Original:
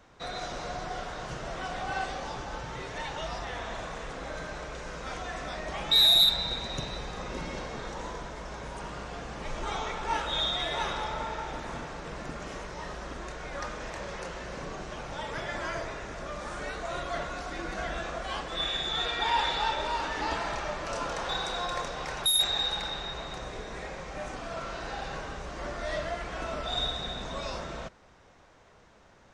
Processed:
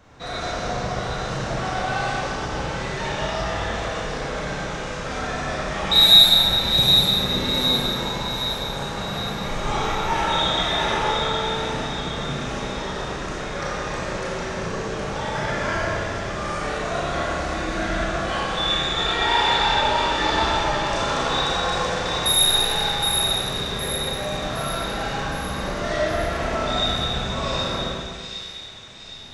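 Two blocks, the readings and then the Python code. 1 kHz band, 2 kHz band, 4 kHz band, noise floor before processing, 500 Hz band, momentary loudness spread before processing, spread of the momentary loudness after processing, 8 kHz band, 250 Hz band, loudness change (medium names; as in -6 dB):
+9.5 dB, +10.0 dB, +10.0 dB, -57 dBFS, +10.5 dB, 13 LU, 12 LU, +10.0 dB, +12.5 dB, +10.0 dB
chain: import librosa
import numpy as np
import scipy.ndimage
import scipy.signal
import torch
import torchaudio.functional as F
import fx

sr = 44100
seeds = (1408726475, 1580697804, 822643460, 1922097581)

y = fx.peak_eq(x, sr, hz=120.0, db=6.0, octaves=1.4)
y = fx.echo_split(y, sr, split_hz=2200.0, low_ms=124, high_ms=765, feedback_pct=52, wet_db=-5)
y = fx.rev_schroeder(y, sr, rt60_s=1.4, comb_ms=28, drr_db=-4.0)
y = y * librosa.db_to_amplitude(3.0)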